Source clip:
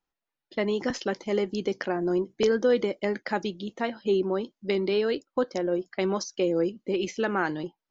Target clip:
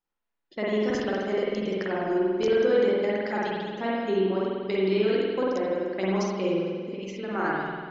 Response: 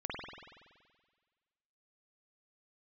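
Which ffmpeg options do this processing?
-filter_complex "[0:a]asettb=1/sr,asplit=3[a][b][c];[a]atrim=end=6.544[d];[b]atrim=start=6.54:end=7.31,asetpts=PTS-STARTPTS,afade=t=in:d=0.004:c=qsin,afade=t=out:st=0.766:d=0.004:c=qsin,acompressor=threshold=-31dB:ratio=6[e];[c]atrim=start=7.306[f];[d][e]acrossfade=d=0.004:c1=hsin:c2=qsin[g];[g][f]acrossfade=d=0.004:c1=qsin:c2=hsin[h];[1:a]atrim=start_sample=2205[i];[h][i]afir=irnorm=-1:irlink=0,volume=-1.5dB"

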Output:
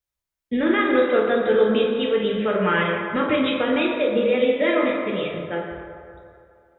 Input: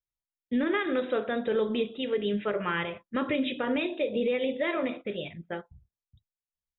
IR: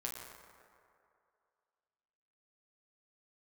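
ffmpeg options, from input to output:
-filter_complex "[1:a]atrim=start_sample=2205[a];[0:a][a]afir=irnorm=-1:irlink=0,volume=9dB"

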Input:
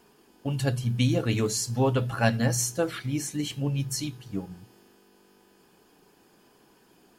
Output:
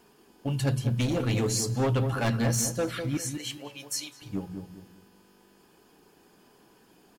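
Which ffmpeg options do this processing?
-filter_complex "[0:a]asettb=1/sr,asplit=3[a][b][c];[a]atrim=end=3.174[d];[b]atrim=start=3.17:end=4.22,asetpts=PTS-STARTPTS,afade=t=in:d=0.004:c=qsin,afade=t=out:st=1.046:d=0.004:c=qsin,highpass=660[e];[c]atrim=start=4.216[f];[d][e]acrossfade=d=0.004:c1=hsin:c2=qsin[g];[g][f]acrossfade=d=0.004:c1=qsin:c2=hsin,asoftclip=type=hard:threshold=-22dB,asplit=2[h][i];[i]adelay=202,lowpass=f=990:p=1,volume=-6.5dB,asplit=2[j][k];[k]adelay=202,lowpass=f=990:p=1,volume=0.33,asplit=2[l][m];[m]adelay=202,lowpass=f=990:p=1,volume=0.33,asplit=2[n][o];[o]adelay=202,lowpass=f=990:p=1,volume=0.33[p];[h][j][l][n][p]amix=inputs=5:normalize=0"

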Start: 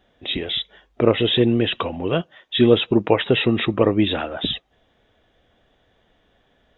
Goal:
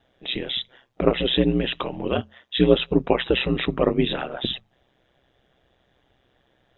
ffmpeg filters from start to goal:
-af "bandreject=f=50:t=h:w=6,bandreject=f=100:t=h:w=6,bandreject=f=150:t=h:w=6,aeval=exprs='val(0)*sin(2*PI*64*n/s)':c=same"

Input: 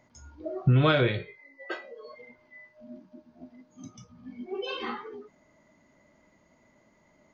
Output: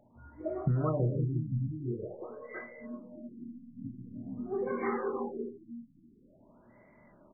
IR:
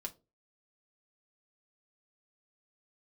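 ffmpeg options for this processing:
-filter_complex "[0:a]asettb=1/sr,asplit=3[a][b][c];[a]atrim=end=3.474[d];[b]atrim=start=3.47:end=3.93,asetpts=PTS-STARTPTS,afade=t=in:d=0.004:c=qsin,afade=t=out:st=0.456:d=0.004:c=qsin,lowshelf=f=120:g=11[e];[c]atrim=start=3.926[f];[d][e]acrossfade=d=0.004:c1=hsin:c2=qsin[g];[g][f]acrossfade=d=0.004:c1=qsin:c2=hsin,aecho=1:1:181|322|347|518|845|867:0.237|0.501|0.335|0.501|0.282|0.224,asplit=2[h][i];[1:a]atrim=start_sample=2205,lowshelf=f=390:g=11,adelay=25[j];[i][j]afir=irnorm=-1:irlink=0,volume=-10dB[k];[h][k]amix=inputs=2:normalize=0,acompressor=threshold=-26dB:ratio=6,equalizer=f=67:t=o:w=0.23:g=-12.5,afftfilt=real='re*lt(b*sr/1024,280*pow(2400/280,0.5+0.5*sin(2*PI*0.47*pts/sr)))':imag='im*lt(b*sr/1024,280*pow(2400/280,0.5+0.5*sin(2*PI*0.47*pts/sr)))':win_size=1024:overlap=0.75"

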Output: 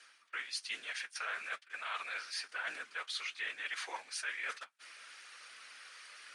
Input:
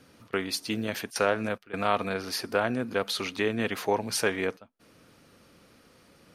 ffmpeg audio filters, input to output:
-filter_complex "[0:a]asplit=2[a][b];[b]acrusher=bits=6:mix=0:aa=0.000001,volume=-5dB[c];[a][c]amix=inputs=2:normalize=0,afftfilt=real='hypot(re,im)*cos(2*PI*random(0))':imag='hypot(re,im)*sin(2*PI*random(1))':win_size=512:overlap=0.75,highpass=f=1.7k:t=q:w=1.5,areverse,acompressor=threshold=-56dB:ratio=4,areverse,flanger=delay=6.3:depth=7.2:regen=-42:speed=1.1:shape=triangular,aresample=22050,aresample=44100,volume=17.5dB"

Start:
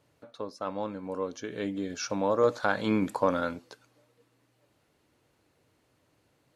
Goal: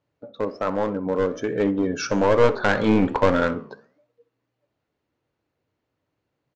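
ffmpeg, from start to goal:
-filter_complex "[0:a]aemphasis=mode=reproduction:type=50kf,afftdn=nr=19:nf=-48,adynamicequalizer=threshold=0.00891:dfrequency=430:dqfactor=4.3:tfrequency=430:tqfactor=4.3:attack=5:release=100:ratio=0.375:range=2:mode=boostabove:tftype=bell,acontrast=80,aresample=16000,aeval=exprs='clip(val(0),-1,0.075)':c=same,aresample=44100,aeval=exprs='0.531*(cos(1*acos(clip(val(0)/0.531,-1,1)))-cos(1*PI/2))+0.0106*(cos(2*acos(clip(val(0)/0.531,-1,1)))-cos(2*PI/2))+0.0266*(cos(5*acos(clip(val(0)/0.531,-1,1)))-cos(5*PI/2))':c=same,flanger=delay=9.3:depth=8.5:regen=-83:speed=1.2:shape=triangular,asplit=2[a][b];[b]adelay=64,lowpass=f=2k:p=1,volume=-16.5dB,asplit=2[c][d];[d]adelay=64,lowpass=f=2k:p=1,volume=0.37,asplit=2[e][f];[f]adelay=64,lowpass=f=2k:p=1,volume=0.37[g];[a][c][e][g]amix=inputs=4:normalize=0,volume=6.5dB"

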